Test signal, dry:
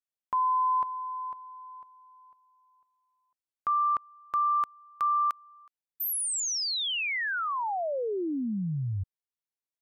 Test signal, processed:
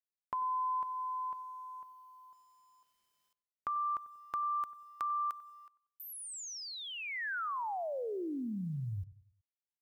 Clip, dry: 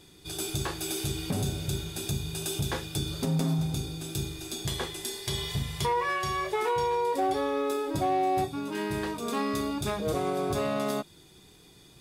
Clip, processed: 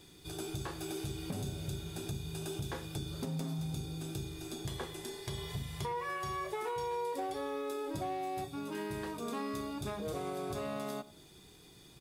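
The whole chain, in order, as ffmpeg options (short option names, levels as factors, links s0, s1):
-filter_complex "[0:a]acrossover=split=1700|7600[s0][s1][s2];[s0]acompressor=threshold=0.0178:ratio=3[s3];[s1]acompressor=threshold=0.002:ratio=2[s4];[s2]acompressor=threshold=0.00178:ratio=2.5[s5];[s3][s4][s5]amix=inputs=3:normalize=0,acrusher=bits=11:mix=0:aa=0.000001,asplit=2[s6][s7];[s7]adelay=94,lowpass=f=1100:p=1,volume=0.168,asplit=2[s8][s9];[s9]adelay=94,lowpass=f=1100:p=1,volume=0.43,asplit=2[s10][s11];[s11]adelay=94,lowpass=f=1100:p=1,volume=0.43,asplit=2[s12][s13];[s13]adelay=94,lowpass=f=1100:p=1,volume=0.43[s14];[s8][s10][s12][s14]amix=inputs=4:normalize=0[s15];[s6][s15]amix=inputs=2:normalize=0,volume=0.75"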